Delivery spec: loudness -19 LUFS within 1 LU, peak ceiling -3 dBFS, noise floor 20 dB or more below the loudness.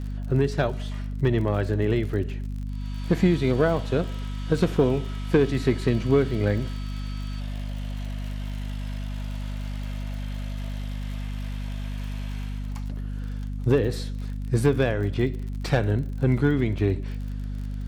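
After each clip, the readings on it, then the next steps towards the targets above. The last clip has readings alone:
tick rate 43 per s; hum 50 Hz; highest harmonic 250 Hz; hum level -28 dBFS; loudness -26.5 LUFS; peak level -9.0 dBFS; loudness target -19.0 LUFS
-> de-click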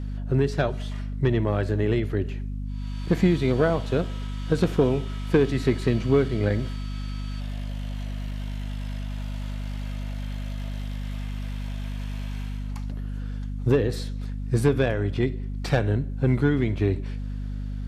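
tick rate 0.056 per s; hum 50 Hz; highest harmonic 250 Hz; hum level -28 dBFS
-> hum notches 50/100/150/200/250 Hz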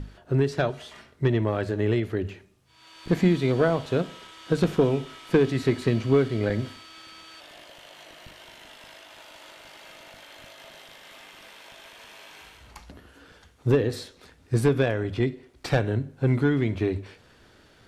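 hum not found; loudness -25.0 LUFS; peak level -9.5 dBFS; loudness target -19.0 LUFS
-> trim +6 dB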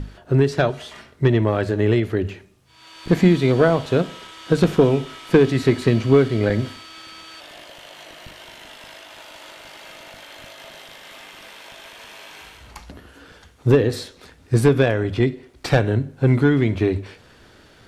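loudness -19.0 LUFS; peak level -3.5 dBFS; noise floor -50 dBFS

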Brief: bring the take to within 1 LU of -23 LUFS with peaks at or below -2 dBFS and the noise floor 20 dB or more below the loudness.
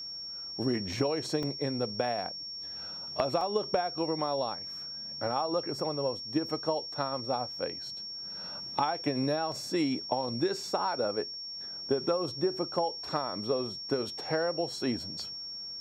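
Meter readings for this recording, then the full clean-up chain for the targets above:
dropouts 3; longest dropout 2.1 ms; steady tone 5.5 kHz; tone level -38 dBFS; loudness -32.5 LUFS; peak level -15.0 dBFS; loudness target -23.0 LUFS
-> interpolate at 1.43/3.41/9.52 s, 2.1 ms; band-stop 5.5 kHz, Q 30; trim +9.5 dB

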